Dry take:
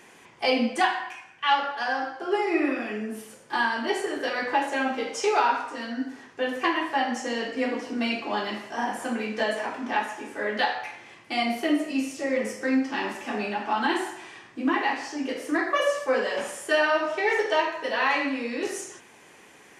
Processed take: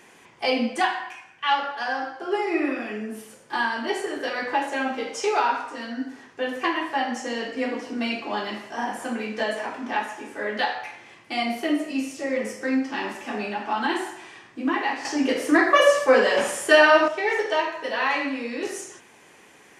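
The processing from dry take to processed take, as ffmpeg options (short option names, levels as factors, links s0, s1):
-filter_complex "[0:a]asplit=3[s0][s1][s2];[s0]atrim=end=15.052[s3];[s1]atrim=start=15.048:end=17.082,asetpts=PTS-STARTPTS,volume=2.37[s4];[s2]atrim=start=17.078[s5];[s3][s4]acrossfade=d=0.004:c1=hsin:c2=hsin[s6];[s6][s5]acrossfade=d=0.004:c1=hsin:c2=hsin"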